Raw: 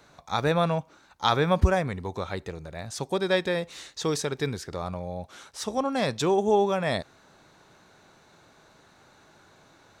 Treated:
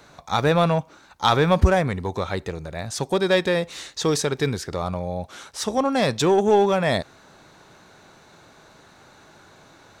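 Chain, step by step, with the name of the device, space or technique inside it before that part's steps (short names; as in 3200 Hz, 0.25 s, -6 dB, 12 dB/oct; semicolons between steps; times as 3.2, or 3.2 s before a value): parallel distortion (in parallel at -5.5 dB: hard clip -23.5 dBFS, distortion -8 dB); on the sum: gain +2.5 dB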